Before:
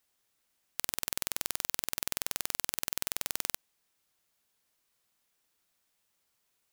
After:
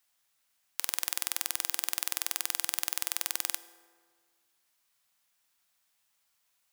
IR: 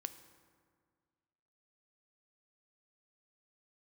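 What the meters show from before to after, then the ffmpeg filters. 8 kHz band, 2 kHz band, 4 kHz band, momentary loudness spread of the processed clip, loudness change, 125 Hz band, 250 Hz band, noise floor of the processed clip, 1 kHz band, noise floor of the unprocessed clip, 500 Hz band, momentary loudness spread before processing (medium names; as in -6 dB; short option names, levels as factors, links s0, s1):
+2.5 dB, +2.0 dB, +2.5 dB, 3 LU, +2.5 dB, -5.5 dB, -5.0 dB, -75 dBFS, +1.0 dB, -77 dBFS, -4.0 dB, 3 LU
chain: -filter_complex "[0:a]asplit=2[s0][s1];[s1]highpass=f=420:w=0.5412,highpass=f=420:w=1.3066[s2];[1:a]atrim=start_sample=2205[s3];[s2][s3]afir=irnorm=-1:irlink=0,volume=2.11[s4];[s0][s4]amix=inputs=2:normalize=0,volume=0.531"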